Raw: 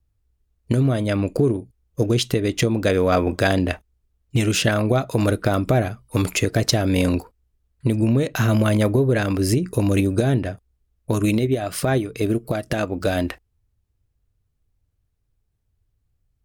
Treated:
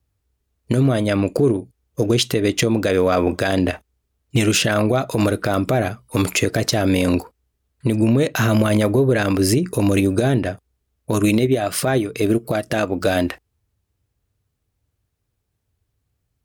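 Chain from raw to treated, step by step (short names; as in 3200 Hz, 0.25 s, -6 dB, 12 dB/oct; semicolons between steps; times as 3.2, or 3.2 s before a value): HPF 55 Hz; low shelf 160 Hz -6.5 dB; limiter -12.5 dBFS, peak gain reduction 8.5 dB; gain +5.5 dB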